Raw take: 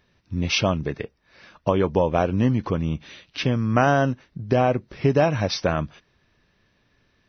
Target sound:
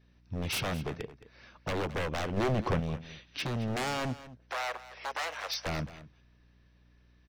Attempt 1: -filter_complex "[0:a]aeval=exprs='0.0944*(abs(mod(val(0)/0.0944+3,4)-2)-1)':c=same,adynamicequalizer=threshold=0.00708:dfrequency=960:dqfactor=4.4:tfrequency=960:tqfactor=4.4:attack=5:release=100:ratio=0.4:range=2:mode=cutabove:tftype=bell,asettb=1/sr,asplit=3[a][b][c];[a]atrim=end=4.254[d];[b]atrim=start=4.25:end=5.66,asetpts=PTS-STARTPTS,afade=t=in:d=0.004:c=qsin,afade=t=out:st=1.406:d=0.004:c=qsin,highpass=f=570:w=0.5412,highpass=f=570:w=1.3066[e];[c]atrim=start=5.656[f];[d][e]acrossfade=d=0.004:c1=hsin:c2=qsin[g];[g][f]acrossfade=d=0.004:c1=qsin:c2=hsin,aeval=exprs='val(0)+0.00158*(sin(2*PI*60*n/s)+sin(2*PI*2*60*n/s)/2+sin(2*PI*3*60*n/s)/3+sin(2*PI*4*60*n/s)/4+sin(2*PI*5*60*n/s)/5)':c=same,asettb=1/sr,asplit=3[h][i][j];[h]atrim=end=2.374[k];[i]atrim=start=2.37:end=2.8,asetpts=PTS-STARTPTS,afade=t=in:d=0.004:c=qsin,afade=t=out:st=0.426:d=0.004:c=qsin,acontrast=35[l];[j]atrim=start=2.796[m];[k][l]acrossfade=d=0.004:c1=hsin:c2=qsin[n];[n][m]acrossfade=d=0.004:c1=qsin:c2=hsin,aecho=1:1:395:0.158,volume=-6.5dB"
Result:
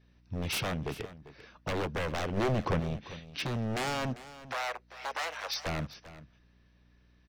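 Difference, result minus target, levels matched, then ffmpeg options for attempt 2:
echo 0.177 s late
-filter_complex "[0:a]aeval=exprs='0.0944*(abs(mod(val(0)/0.0944+3,4)-2)-1)':c=same,adynamicequalizer=threshold=0.00708:dfrequency=960:dqfactor=4.4:tfrequency=960:tqfactor=4.4:attack=5:release=100:ratio=0.4:range=2:mode=cutabove:tftype=bell,asettb=1/sr,asplit=3[a][b][c];[a]atrim=end=4.254[d];[b]atrim=start=4.25:end=5.66,asetpts=PTS-STARTPTS,afade=t=in:d=0.004:c=qsin,afade=t=out:st=1.406:d=0.004:c=qsin,highpass=f=570:w=0.5412,highpass=f=570:w=1.3066[e];[c]atrim=start=5.656[f];[d][e]acrossfade=d=0.004:c1=hsin:c2=qsin[g];[g][f]acrossfade=d=0.004:c1=qsin:c2=hsin,aeval=exprs='val(0)+0.00158*(sin(2*PI*60*n/s)+sin(2*PI*2*60*n/s)/2+sin(2*PI*3*60*n/s)/3+sin(2*PI*4*60*n/s)/4+sin(2*PI*5*60*n/s)/5)':c=same,asettb=1/sr,asplit=3[h][i][j];[h]atrim=end=2.374[k];[i]atrim=start=2.37:end=2.8,asetpts=PTS-STARTPTS,afade=t=in:d=0.004:c=qsin,afade=t=out:st=0.426:d=0.004:c=qsin,acontrast=35[l];[j]atrim=start=2.796[m];[k][l]acrossfade=d=0.004:c1=hsin:c2=qsin[n];[n][m]acrossfade=d=0.004:c1=qsin:c2=hsin,aecho=1:1:218:0.158,volume=-6.5dB"

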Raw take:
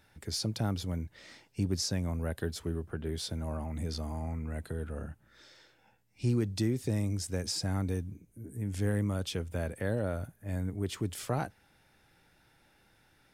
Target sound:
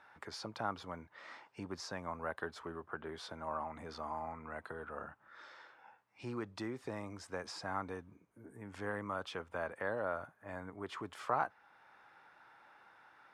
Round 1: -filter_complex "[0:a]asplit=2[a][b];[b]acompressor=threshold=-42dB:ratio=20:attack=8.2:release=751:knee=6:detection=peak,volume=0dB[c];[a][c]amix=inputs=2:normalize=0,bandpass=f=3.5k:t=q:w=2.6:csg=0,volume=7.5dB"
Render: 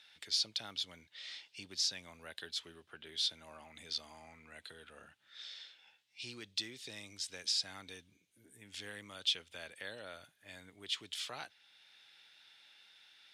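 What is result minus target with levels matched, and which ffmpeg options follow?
1000 Hz band -18.5 dB
-filter_complex "[0:a]asplit=2[a][b];[b]acompressor=threshold=-42dB:ratio=20:attack=8.2:release=751:knee=6:detection=peak,volume=0dB[c];[a][c]amix=inputs=2:normalize=0,bandpass=f=1.1k:t=q:w=2.6:csg=0,volume=7.5dB"

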